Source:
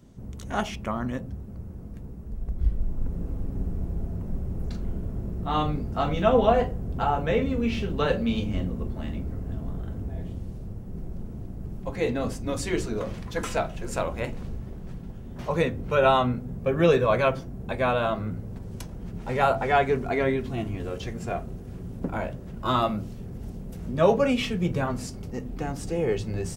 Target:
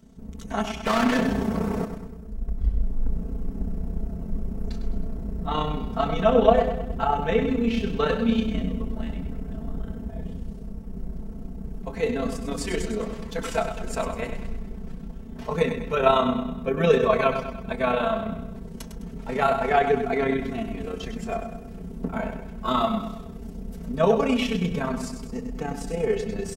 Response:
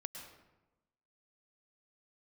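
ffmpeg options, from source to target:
-filter_complex "[0:a]asplit=3[a][b][c];[a]afade=t=out:st=0.85:d=0.02[d];[b]asplit=2[e][f];[f]highpass=f=720:p=1,volume=37dB,asoftclip=type=tanh:threshold=-16dB[g];[e][g]amix=inputs=2:normalize=0,lowpass=f=3.9k:p=1,volume=-6dB,afade=t=in:st=0.85:d=0.02,afade=t=out:st=1.84:d=0.02[h];[c]afade=t=in:st=1.84:d=0.02[i];[d][h][i]amix=inputs=3:normalize=0,aecho=1:1:104|208|312|416|520:0.376|0.18|0.0866|0.0416|0.02,tremolo=f=31:d=0.519,aecho=1:1:4.5:0.82"

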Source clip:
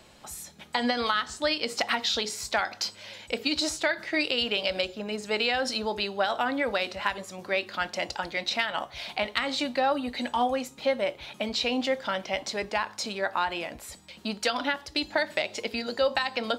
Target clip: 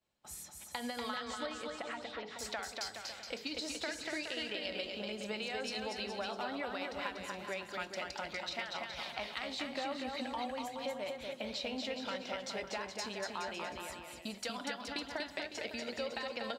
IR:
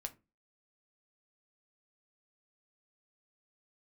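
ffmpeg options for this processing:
-filter_complex "[0:a]agate=range=-33dB:threshold=-40dB:ratio=3:detection=peak,acompressor=threshold=-33dB:ratio=3,asettb=1/sr,asplit=3[a][b][c];[a]atrim=end=1.464[d];[b]atrim=start=1.46:end=2.39,asetpts=PTS-STARTPTS,afade=t=in:d=0.004:c=qsin,afade=t=out:st=0.926:d=0.004:c=qsin,lowpass=2k[e];[c]atrim=start=2.386[f];[d][e]acrossfade=d=0.004:c1=hsin:c2=qsin[g];[g][f]acrossfade=d=0.004:c1=qsin:c2=hsin,aecho=1:1:240|420|555|656.2|732.2:0.631|0.398|0.251|0.158|0.1,volume=-6.5dB"

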